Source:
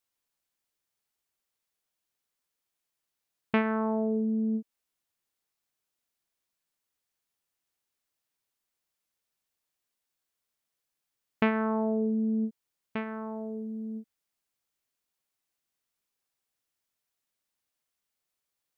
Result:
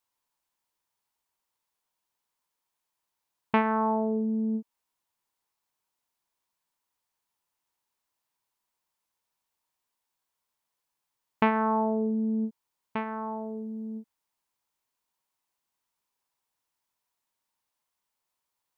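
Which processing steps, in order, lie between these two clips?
parametric band 950 Hz +12 dB 0.43 octaves

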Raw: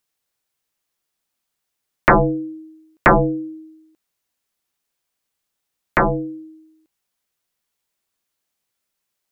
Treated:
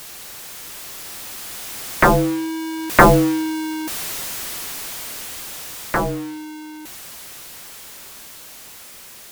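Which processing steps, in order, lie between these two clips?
converter with a step at zero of −22.5 dBFS
source passing by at 0:03.44, 10 m/s, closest 11 metres
noise that follows the level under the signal 18 dB
level +2.5 dB

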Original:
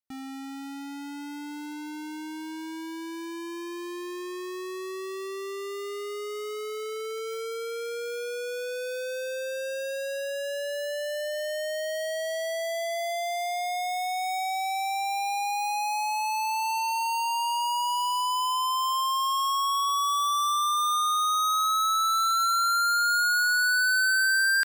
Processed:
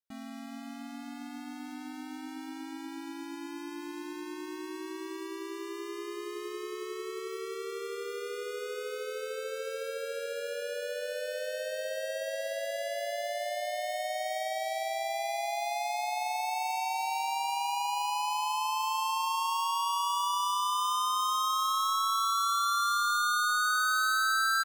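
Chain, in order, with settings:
feedback echo with a band-pass in the loop 363 ms, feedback 56%, band-pass 530 Hz, level −13 dB
pitch-shifted copies added −3 semitones 0 dB
level −7.5 dB

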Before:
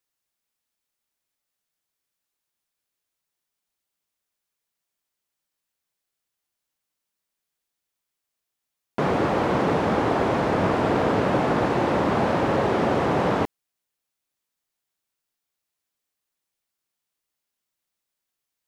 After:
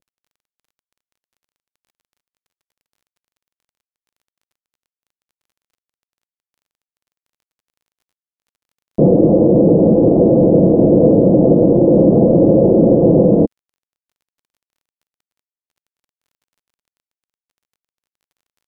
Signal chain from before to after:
variable-slope delta modulation 16 kbit/s
elliptic low-pass filter 560 Hz, stop band 80 dB
low-shelf EQ 440 Hz −5.5 dB
comb filter 6 ms, depth 46%
dynamic equaliser 240 Hz, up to +5 dB, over −40 dBFS, Q 1.8
brickwall limiter −19 dBFS, peak gain reduction 6 dB
automatic gain control gain up to 10 dB
surface crackle 23 per second −56 dBFS
level +7 dB

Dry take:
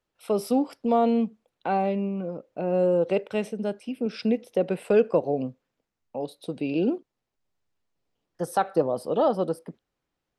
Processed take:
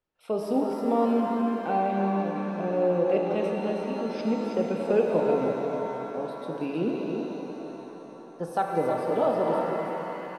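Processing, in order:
high-shelf EQ 5,300 Hz −10.5 dB
on a send: single-tap delay 317 ms −6 dB
on the sum: reverb with rising layers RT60 3.7 s, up +7 semitones, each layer −8 dB, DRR 1 dB
level −4 dB

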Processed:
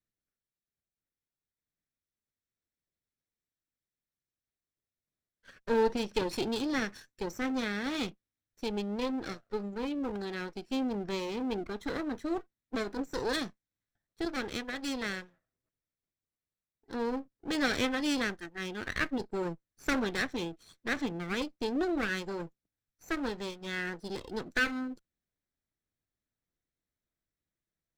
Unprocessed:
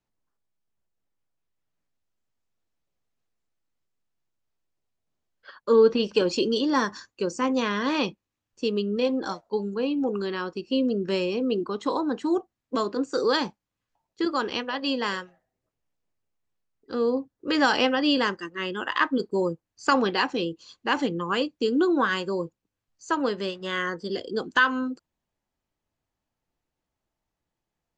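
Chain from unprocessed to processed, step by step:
lower of the sound and its delayed copy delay 0.53 ms
level −7.5 dB

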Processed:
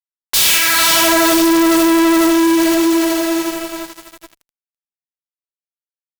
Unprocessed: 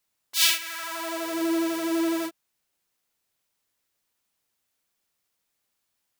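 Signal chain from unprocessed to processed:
feedback delay with all-pass diffusion 494 ms, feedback 51%, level −11 dB
fuzz pedal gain 42 dB, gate −51 dBFS
level +2.5 dB

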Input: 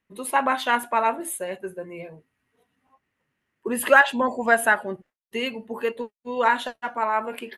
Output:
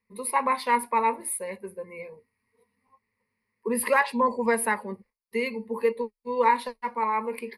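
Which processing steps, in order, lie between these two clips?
EQ curve with evenly spaced ripples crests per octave 0.9, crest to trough 17 dB
level −6 dB

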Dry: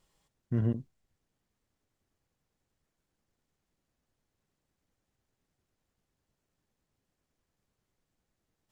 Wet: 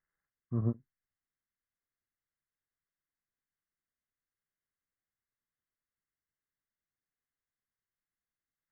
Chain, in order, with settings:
hearing-aid frequency compression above 1,000 Hz 4 to 1
expander for the loud parts 2.5 to 1, over −39 dBFS

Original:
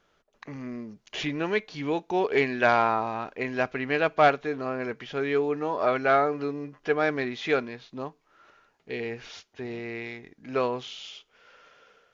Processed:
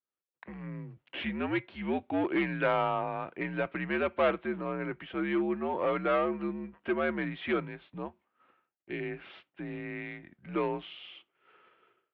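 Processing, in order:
downward expander −51 dBFS
in parallel at −4 dB: wave folding −21 dBFS
on the sum: single-sideband voice off tune −81 Hz 190–3,300 Hz
level −7.5 dB

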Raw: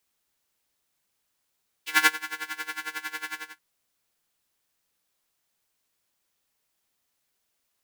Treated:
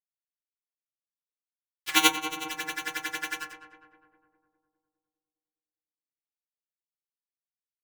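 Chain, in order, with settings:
in parallel at −2 dB: upward compression, threshold −38 dBFS
on the sum: dead-zone distortion −35.5 dBFS
flanger swept by the level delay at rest 8.2 ms, full sweep at −28 dBFS
feedback echo with a low-pass in the loop 203 ms, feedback 61%, low-pass 1,500 Hz, level −10 dB
convolution reverb RT60 0.30 s, pre-delay 3 ms, DRR 4 dB
level +2 dB

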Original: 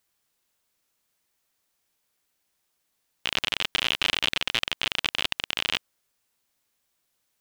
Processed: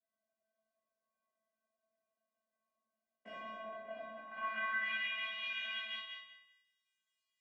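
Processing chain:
delay that plays each chunk backwards 119 ms, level −4.5 dB
treble cut that deepens with the level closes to 1,800 Hz, closed at −23.5 dBFS
octave-band graphic EQ 125/500/2,000/4,000/8,000 Hz +10/+11/+9/−8/+7 dB
0:03.35–0:04.36: compressor whose output falls as the input rises −33 dBFS, ratio −0.5
band-pass filter sweep 600 Hz → 3,200 Hz, 0:04.02–0:05.16
random phases in short frames
tape wow and flutter 110 cents
tuned comb filter 220 Hz, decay 0.52 s, harmonics odd, mix 100%
feedback echo with a high-pass in the loop 187 ms, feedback 20%, high-pass 440 Hz, level −6 dB
convolution reverb RT60 0.80 s, pre-delay 4 ms, DRR −6 dB
level +6 dB

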